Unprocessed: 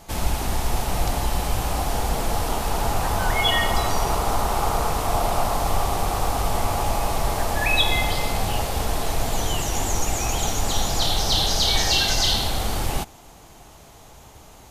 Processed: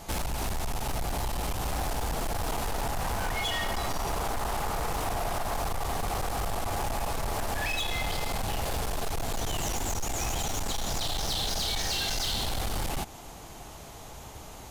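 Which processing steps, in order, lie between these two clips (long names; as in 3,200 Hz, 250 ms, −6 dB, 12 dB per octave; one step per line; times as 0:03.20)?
downward compressor, threshold −25 dBFS, peak gain reduction 11 dB
hard clipping −29 dBFS, distortion −9 dB
level +2 dB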